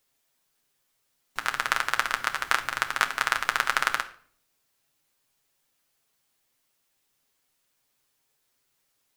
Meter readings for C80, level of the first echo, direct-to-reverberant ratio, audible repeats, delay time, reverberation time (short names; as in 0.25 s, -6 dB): 18.0 dB, none, 4.0 dB, none, none, 0.50 s